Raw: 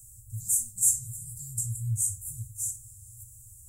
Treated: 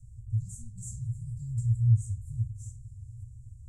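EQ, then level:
high-frequency loss of the air 120 metres
tilt shelving filter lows +9 dB, about 770 Hz
0.0 dB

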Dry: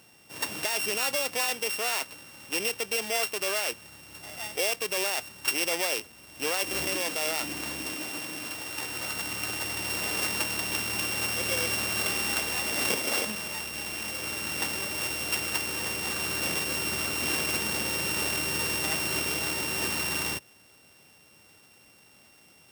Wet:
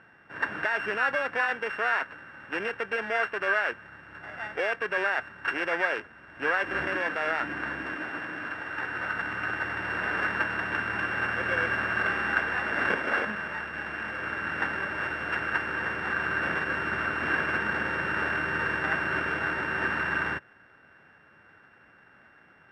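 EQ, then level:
low-pass with resonance 1,600 Hz, resonance Q 7.1
0.0 dB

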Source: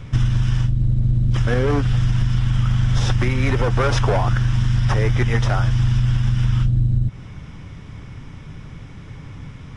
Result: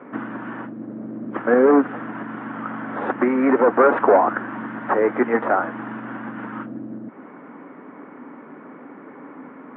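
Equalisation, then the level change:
elliptic high-pass filter 250 Hz, stop band 70 dB
low-pass filter 1,700 Hz 24 dB per octave
high-frequency loss of the air 360 metres
+9.0 dB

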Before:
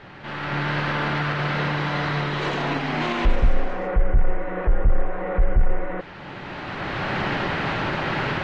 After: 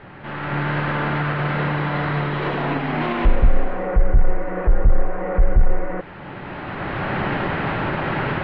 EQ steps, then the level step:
high-frequency loss of the air 360 metres
+3.5 dB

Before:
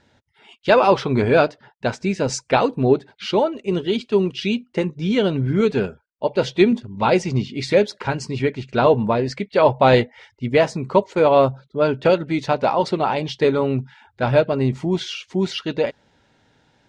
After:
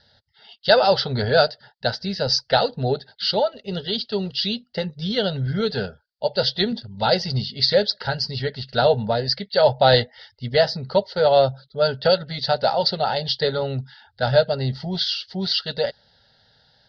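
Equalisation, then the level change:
low-pass with resonance 4,700 Hz, resonance Q 7.6
phaser with its sweep stopped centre 1,600 Hz, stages 8
0.0 dB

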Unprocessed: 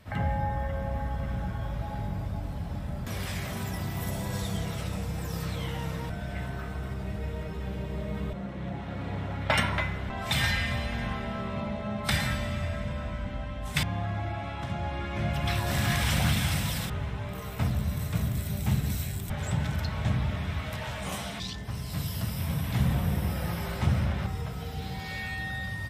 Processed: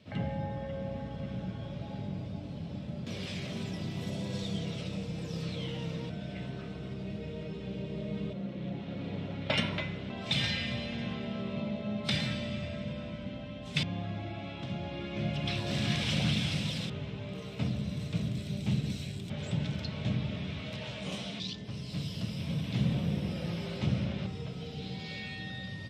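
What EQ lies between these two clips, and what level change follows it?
Chebyshev band-pass filter 160–4,300 Hz, order 2
flat-topped bell 1,200 Hz −10 dB
0.0 dB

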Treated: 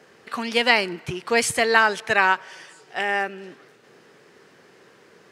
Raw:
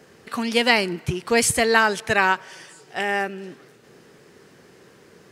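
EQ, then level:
high-pass filter 79 Hz
low-shelf EQ 350 Hz −10 dB
high-shelf EQ 6,000 Hz −10 dB
+2.0 dB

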